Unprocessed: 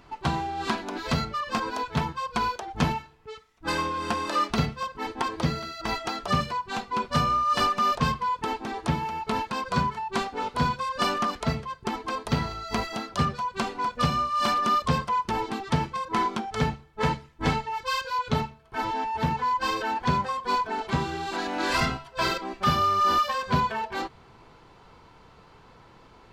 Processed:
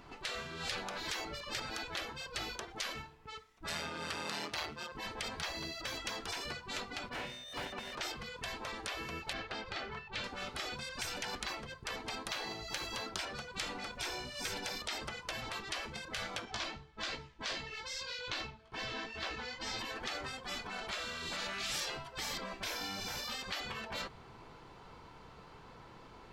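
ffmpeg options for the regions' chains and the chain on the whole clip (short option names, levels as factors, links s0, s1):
-filter_complex "[0:a]asettb=1/sr,asplit=3[s0][s1][s2];[s0]atrim=end=3.694[s3];[s1]atrim=start=3.69:end=4.92,asetpts=PTS-STARTPTS,afade=t=in:d=0.004:c=qsin,afade=t=out:st=1.226:d=0.004:c=qsin,tremolo=f=160:d=0.667,highpass=140[s4];[s2]atrim=start=4.916[s5];[s3][s4]acrossfade=d=0.004:c1=hsin:c2=qsin[s6];[s6][s5]acrossfade=d=0.004:c1=qsin:c2=hsin,asettb=1/sr,asplit=3[s7][s8][s9];[s7]atrim=end=7.094[s10];[s8]atrim=start=7.09:end=7.98,asetpts=PTS-STARTPTS,afade=t=in:d=0.004:c=qsin,afade=t=out:st=0.886:d=0.004:c=qsin,highpass=f=130:w=0.5412,highpass=f=130:w=1.3066,volume=35.5,asoftclip=hard,volume=0.0282,bass=f=250:g=2,treble=f=4000:g=-14[s11];[s9]atrim=start=7.976[s12];[s10][s11]acrossfade=d=0.004:c1=hsin:c2=qsin[s13];[s13][s12]acrossfade=d=0.004:c1=qsin:c2=hsin,asettb=1/sr,asplit=3[s14][s15][s16];[s14]atrim=end=9.334[s17];[s15]atrim=start=9.33:end=10.24,asetpts=PTS-STARTPTS,afade=t=in:d=0.004:c=qsin,afade=t=out:st=0.906:d=0.004:c=qsin,lowpass=3600,equalizer=f=270:w=2.8:g=-13[s18];[s16]atrim=start=10.236[s19];[s17][s18]acrossfade=d=0.004:c1=hsin:c2=qsin[s20];[s20][s19]acrossfade=d=0.004:c1=qsin:c2=hsin,asettb=1/sr,asplit=3[s21][s22][s23];[s21]atrim=end=16.454[s24];[s22]atrim=start=16.45:end=19.79,asetpts=PTS-STARTPTS,afade=t=in:d=0.004:c=qsin,afade=t=out:st=3.336:d=0.004:c=qsin,lowpass=6900,equalizer=f=4300:w=0.59:g=5.5,flanger=delay=15.5:depth=2.6:speed=2.5[s25];[s23]atrim=start=19.786[s26];[s24][s25]acrossfade=d=0.004:c1=hsin:c2=qsin[s27];[s27][s26]acrossfade=d=0.004:c1=qsin:c2=hsin,bandreject=f=50:t=h:w=6,bandreject=f=100:t=h:w=6,afftfilt=real='re*lt(hypot(re,im),0.0631)':imag='im*lt(hypot(re,im),0.0631)':win_size=1024:overlap=0.75,volume=0.841"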